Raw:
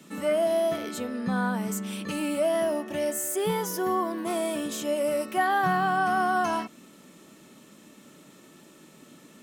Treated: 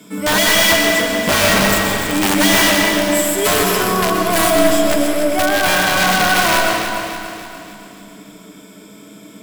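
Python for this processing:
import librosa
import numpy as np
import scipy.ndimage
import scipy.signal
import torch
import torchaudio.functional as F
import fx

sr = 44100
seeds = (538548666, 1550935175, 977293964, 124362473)

p1 = fx.rider(x, sr, range_db=10, speed_s=2.0)
p2 = x + (p1 * librosa.db_to_amplitude(1.5))
p3 = fx.ripple_eq(p2, sr, per_octave=1.7, db=13)
p4 = (np.mod(10.0 ** (11.0 / 20.0) * p3 + 1.0, 2.0) - 1.0) / 10.0 ** (11.0 / 20.0)
p5 = fx.quant_companded(p4, sr, bits=6)
p6 = p5 + fx.echo_feedback(p5, sr, ms=289, feedback_pct=51, wet_db=-8.5, dry=0)
y = fx.rev_freeverb(p6, sr, rt60_s=2.0, hf_ratio=0.55, predelay_ms=85, drr_db=0.5)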